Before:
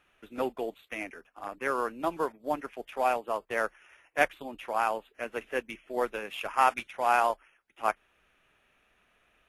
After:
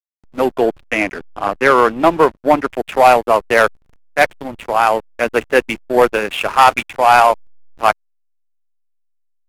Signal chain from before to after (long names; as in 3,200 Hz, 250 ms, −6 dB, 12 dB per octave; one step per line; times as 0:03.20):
automatic gain control gain up to 13 dB
slack as between gear wheels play −30.5 dBFS
0:00.59–0:02.69: high-shelf EQ 7,800 Hz −8.5 dB
soft clipping −9.5 dBFS, distortion −14 dB
level +8.5 dB